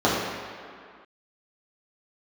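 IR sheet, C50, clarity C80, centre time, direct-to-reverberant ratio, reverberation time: -0.5 dB, 1.5 dB, 106 ms, -8.5 dB, no single decay rate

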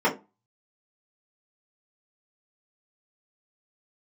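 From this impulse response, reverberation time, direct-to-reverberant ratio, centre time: 0.25 s, -7.0 dB, 16 ms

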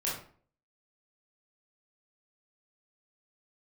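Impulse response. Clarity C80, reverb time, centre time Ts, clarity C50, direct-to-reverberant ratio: 8.5 dB, 0.50 s, 43 ms, 3.5 dB, -6.5 dB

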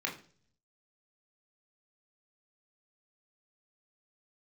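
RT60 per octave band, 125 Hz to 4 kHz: 0.95 s, 0.70 s, 0.55 s, 0.40 s, 0.40 s, 0.50 s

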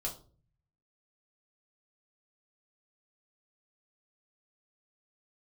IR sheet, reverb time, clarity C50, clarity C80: 0.40 s, 11.5 dB, 16.5 dB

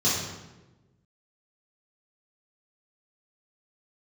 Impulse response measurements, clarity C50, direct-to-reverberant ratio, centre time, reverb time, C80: 1.0 dB, -9.5 dB, 70 ms, 1.1 s, 3.5 dB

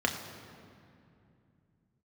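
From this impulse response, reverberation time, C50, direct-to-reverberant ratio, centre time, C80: 2.6 s, 7.0 dB, 2.0 dB, 41 ms, 8.0 dB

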